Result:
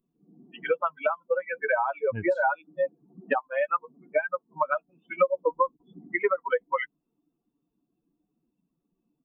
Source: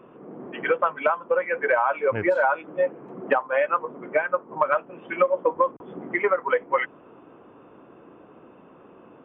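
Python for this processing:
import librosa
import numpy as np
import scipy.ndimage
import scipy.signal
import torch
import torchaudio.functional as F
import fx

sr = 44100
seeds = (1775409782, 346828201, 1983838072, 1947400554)

y = fx.bin_expand(x, sr, power=2.0)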